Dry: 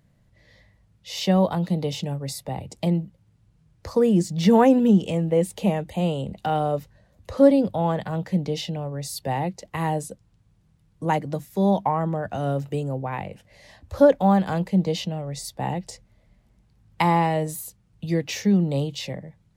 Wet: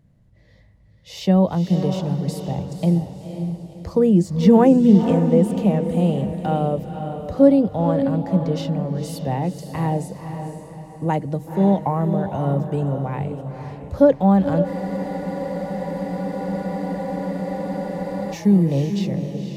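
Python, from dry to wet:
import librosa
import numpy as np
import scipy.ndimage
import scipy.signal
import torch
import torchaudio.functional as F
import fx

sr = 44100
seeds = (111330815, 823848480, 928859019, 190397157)

y = fx.tilt_shelf(x, sr, db=5.0, hz=710.0)
y = fx.echo_diffused(y, sr, ms=511, feedback_pct=42, wet_db=-7.5)
y = fx.spec_freeze(y, sr, seeds[0], at_s=14.68, hold_s=3.66)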